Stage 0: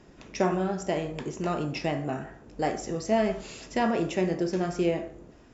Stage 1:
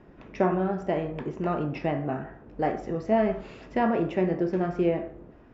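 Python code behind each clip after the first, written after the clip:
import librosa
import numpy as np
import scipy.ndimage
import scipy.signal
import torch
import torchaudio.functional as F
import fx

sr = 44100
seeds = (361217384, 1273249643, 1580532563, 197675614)

y = scipy.signal.sosfilt(scipy.signal.butter(2, 2000.0, 'lowpass', fs=sr, output='sos'), x)
y = y * 10.0 ** (1.5 / 20.0)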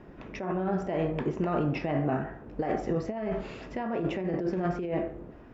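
y = fx.over_compress(x, sr, threshold_db=-29.0, ratio=-1.0)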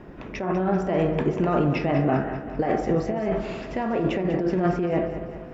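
y = fx.echo_feedback(x, sr, ms=195, feedback_pct=56, wet_db=-11.0)
y = y * 10.0 ** (6.0 / 20.0)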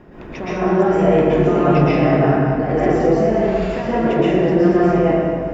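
y = fx.rev_plate(x, sr, seeds[0], rt60_s=1.5, hf_ratio=0.65, predelay_ms=105, drr_db=-8.5)
y = y * 10.0 ** (-1.0 / 20.0)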